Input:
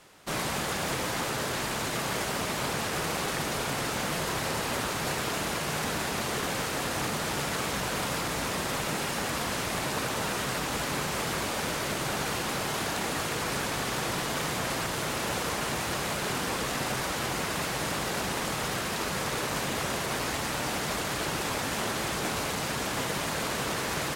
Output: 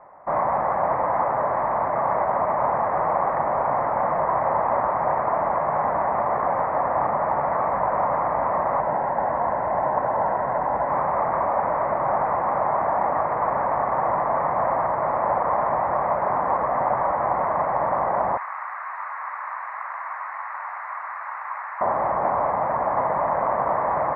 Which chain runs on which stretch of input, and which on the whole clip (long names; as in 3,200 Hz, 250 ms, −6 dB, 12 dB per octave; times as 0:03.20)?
0:08.80–0:10.89: parametric band 2,300 Hz −6 dB 0.24 octaves + notch filter 1,200 Hz, Q 5.6
0:18.37–0:21.81: high-pass filter 1,300 Hz 24 dB per octave + envelope flattener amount 100%
whole clip: elliptic low-pass filter 2,000 Hz, stop band 40 dB; flat-topped bell 800 Hz +16 dB 1.3 octaves; level −1 dB